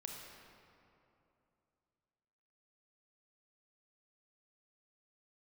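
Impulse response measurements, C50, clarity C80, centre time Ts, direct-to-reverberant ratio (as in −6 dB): 1.0 dB, 2.5 dB, 101 ms, 0.0 dB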